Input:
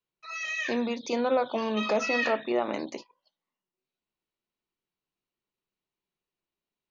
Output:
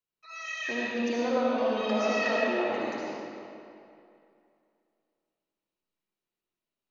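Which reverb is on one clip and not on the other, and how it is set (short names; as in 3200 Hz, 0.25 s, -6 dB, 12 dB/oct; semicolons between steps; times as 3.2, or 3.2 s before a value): digital reverb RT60 2.6 s, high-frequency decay 0.75×, pre-delay 35 ms, DRR -5.5 dB; gain -7 dB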